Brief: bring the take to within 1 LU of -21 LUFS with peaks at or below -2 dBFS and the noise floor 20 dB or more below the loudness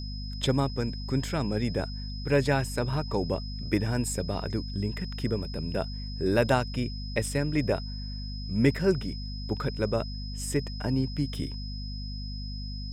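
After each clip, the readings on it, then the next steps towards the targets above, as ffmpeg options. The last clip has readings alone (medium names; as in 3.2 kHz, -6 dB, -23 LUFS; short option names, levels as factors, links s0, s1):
hum 50 Hz; highest harmonic 250 Hz; hum level -34 dBFS; steady tone 5.1 kHz; tone level -42 dBFS; loudness -30.0 LUFS; peak level -10.0 dBFS; loudness target -21.0 LUFS
-> -af "bandreject=f=50:t=h:w=6,bandreject=f=100:t=h:w=6,bandreject=f=150:t=h:w=6,bandreject=f=200:t=h:w=6,bandreject=f=250:t=h:w=6"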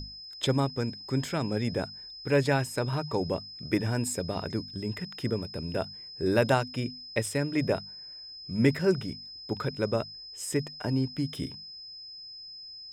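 hum not found; steady tone 5.1 kHz; tone level -42 dBFS
-> -af "bandreject=f=5100:w=30"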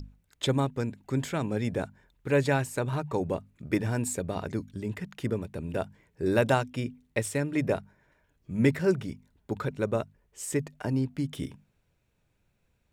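steady tone not found; loudness -30.5 LUFS; peak level -10.5 dBFS; loudness target -21.0 LUFS
-> -af "volume=2.99,alimiter=limit=0.794:level=0:latency=1"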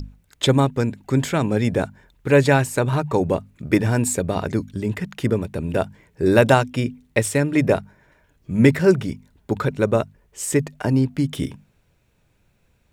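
loudness -21.0 LUFS; peak level -2.0 dBFS; noise floor -63 dBFS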